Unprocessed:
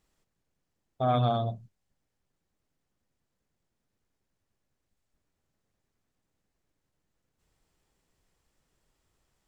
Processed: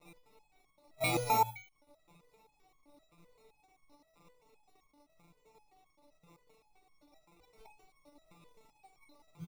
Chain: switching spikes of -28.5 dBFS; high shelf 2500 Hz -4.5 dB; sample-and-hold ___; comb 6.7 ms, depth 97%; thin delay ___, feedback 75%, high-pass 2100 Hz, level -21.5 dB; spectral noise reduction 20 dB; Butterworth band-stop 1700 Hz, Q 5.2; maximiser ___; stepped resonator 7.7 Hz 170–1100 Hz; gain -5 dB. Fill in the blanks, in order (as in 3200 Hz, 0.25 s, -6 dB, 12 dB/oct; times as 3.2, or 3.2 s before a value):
28×, 0.111 s, +16 dB